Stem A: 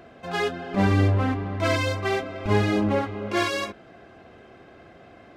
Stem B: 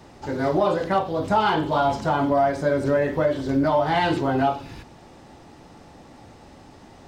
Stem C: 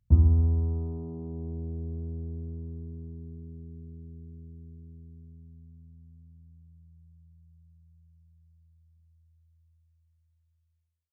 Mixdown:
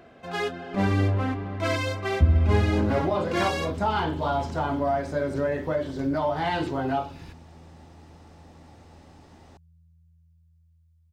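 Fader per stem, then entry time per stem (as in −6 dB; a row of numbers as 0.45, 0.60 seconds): −3.0, −5.5, 0.0 decibels; 0.00, 2.50, 2.10 seconds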